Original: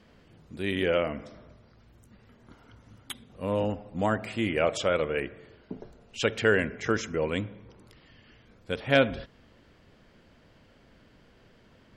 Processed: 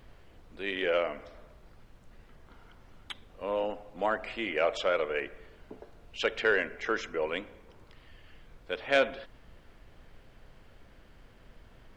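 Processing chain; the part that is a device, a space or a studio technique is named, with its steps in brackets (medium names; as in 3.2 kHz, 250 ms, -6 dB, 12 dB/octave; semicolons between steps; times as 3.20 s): aircraft cabin announcement (band-pass 450–4000 Hz; saturation -13 dBFS, distortion -22 dB; brown noise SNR 18 dB)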